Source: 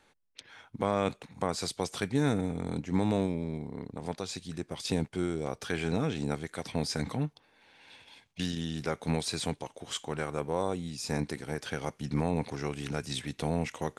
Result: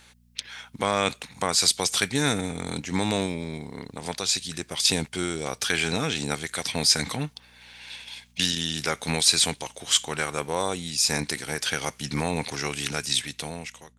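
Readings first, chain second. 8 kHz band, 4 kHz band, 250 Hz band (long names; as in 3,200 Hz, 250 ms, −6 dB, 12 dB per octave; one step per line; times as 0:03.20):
+16.5 dB, +15.0 dB, +1.0 dB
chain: fade-out on the ending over 1.16 s
hum with harmonics 60 Hz, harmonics 4, −61 dBFS −4 dB per octave
tilt shelving filter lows −8.5 dB, about 1,400 Hz
level +9 dB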